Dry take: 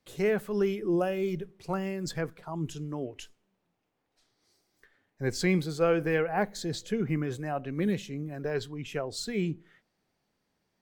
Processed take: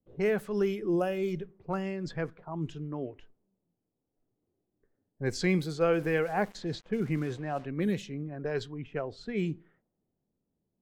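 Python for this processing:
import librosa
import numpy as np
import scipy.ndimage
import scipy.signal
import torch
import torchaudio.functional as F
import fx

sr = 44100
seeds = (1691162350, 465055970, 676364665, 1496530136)

y = fx.sample_gate(x, sr, floor_db=-45.5, at=(5.93, 7.66))
y = fx.env_lowpass(y, sr, base_hz=400.0, full_db=-25.5)
y = y * 10.0 ** (-1.0 / 20.0)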